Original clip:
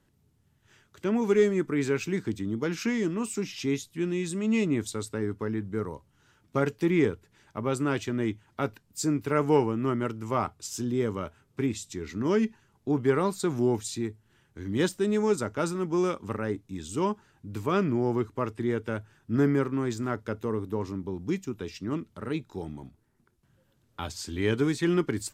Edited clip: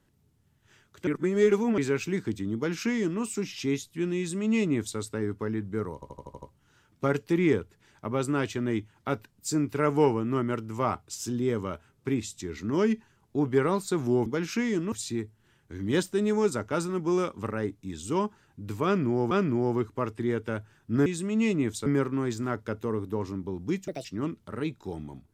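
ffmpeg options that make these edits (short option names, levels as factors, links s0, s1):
-filter_complex "[0:a]asplit=16[s0][s1][s2][s3][s4][s5][s6][s7][s8][s9][s10][s11][s12][s13][s14][s15];[s0]atrim=end=1.072[s16];[s1]atrim=start=1.068:end=1.782,asetpts=PTS-STARTPTS,areverse[s17];[s2]atrim=start=1.778:end=6.022[s18];[s3]atrim=start=5.938:end=6.022[s19];[s4]atrim=start=5.938:end=6.022[s20];[s5]atrim=start=5.938:end=6.022[s21];[s6]atrim=start=5.938:end=6.022[s22];[s7]atrim=start=5.938:end=6.022[s23];[s8]atrim=start=5.938:end=13.782[s24];[s9]atrim=start=2.548:end=3.212[s25];[s10]atrim=start=13.778:end=18.172[s26];[s11]atrim=start=17.708:end=19.462[s27];[s12]atrim=start=4.178:end=4.982[s28];[s13]atrim=start=19.458:end=21.484[s29];[s14]atrim=start=21.48:end=21.74,asetpts=PTS-STARTPTS,asetrate=67914,aresample=44100,atrim=end_sample=7445,asetpts=PTS-STARTPTS[s30];[s15]atrim=start=21.736[s31];[s16][s17]acrossfade=d=0.004:c1=hsin:c2=hsin[s32];[s32][s18]acrossfade=d=0.004:c1=hsin:c2=hsin[s33];[s33][s19]acrossfade=d=0.004:c1=hsin:c2=hsin[s34];[s34][s20]acrossfade=d=0.004:c1=hsin:c2=hsin[s35];[s35][s21]acrossfade=d=0.004:c1=hsin:c2=hsin[s36];[s36][s22]acrossfade=d=0.004:c1=hsin:c2=hsin[s37];[s37][s23]acrossfade=d=0.004:c1=hsin:c2=hsin[s38];[s38][s24]acrossfade=d=0.004:c1=hsin:c2=hsin[s39];[s39][s25]acrossfade=d=0.004:c1=hsin:c2=hsin[s40];[s40][s26]acrossfade=d=0.004:c1=hsin:c2=hsin[s41];[s41][s27]acrossfade=d=0.004:c1=hsin:c2=hsin[s42];[s42][s28]acrossfade=d=0.004:c1=hsin:c2=hsin[s43];[s43][s29]acrossfade=d=0.004:c1=hsin:c2=hsin[s44];[s44][s30]acrossfade=d=0.004:c1=hsin:c2=hsin[s45];[s45][s31]acrossfade=d=0.004:c1=hsin:c2=hsin"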